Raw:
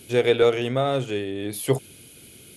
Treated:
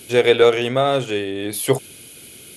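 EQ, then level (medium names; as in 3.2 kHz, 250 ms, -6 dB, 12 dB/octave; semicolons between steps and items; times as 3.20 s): bass shelf 290 Hz -7.5 dB; +7.0 dB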